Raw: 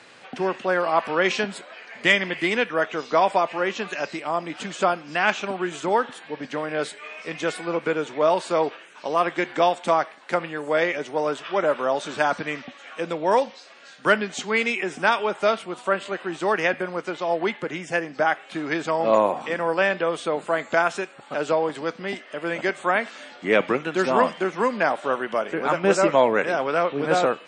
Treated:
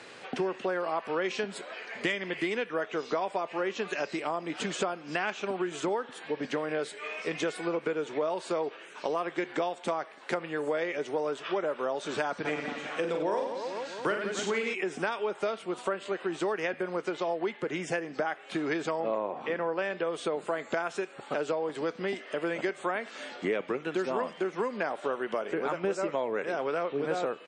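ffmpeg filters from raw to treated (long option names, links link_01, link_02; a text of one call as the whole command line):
ffmpeg -i in.wav -filter_complex "[0:a]asplit=3[link_01][link_02][link_03];[link_01]afade=type=out:start_time=12.44:duration=0.02[link_04];[link_02]aecho=1:1:40|96|174.4|284.2|437.8|653:0.631|0.398|0.251|0.158|0.1|0.0631,afade=type=in:start_time=12.44:duration=0.02,afade=type=out:start_time=14.73:duration=0.02[link_05];[link_03]afade=type=in:start_time=14.73:duration=0.02[link_06];[link_04][link_05][link_06]amix=inputs=3:normalize=0,asettb=1/sr,asplit=3[link_07][link_08][link_09];[link_07]atrim=end=19.004[link_10];[link_08]atrim=start=19:end=19.79,asetpts=PTS-STARTPTS,afade=type=in:duration=0.004:curve=qsin,afade=type=out:start_time=0.786:duration=0.004:curve=qsin,lowpass=3400[link_11];[link_09]atrim=start=19.786[link_12];[link_10][link_11]acrossfade=duration=0.004:curve1=hsin:curve2=qsin[link_13];[link_13][link_12]acrossfade=duration=0.004:curve1=qsin:curve2=hsin,equalizer=frequency=410:width_type=o:width=0.59:gain=6,acompressor=threshold=-28dB:ratio=6" out.wav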